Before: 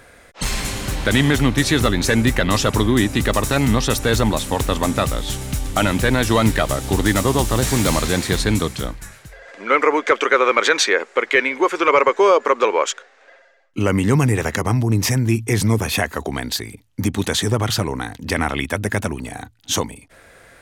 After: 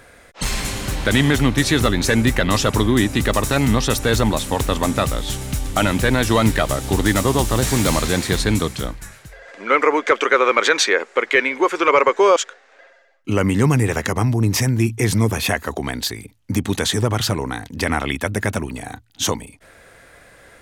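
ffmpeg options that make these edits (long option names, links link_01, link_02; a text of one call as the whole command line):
ffmpeg -i in.wav -filter_complex "[0:a]asplit=2[link_01][link_02];[link_01]atrim=end=12.362[link_03];[link_02]atrim=start=12.848[link_04];[link_03][link_04]acrossfade=duration=0.004:curve1=hsin:curve2=hsin" out.wav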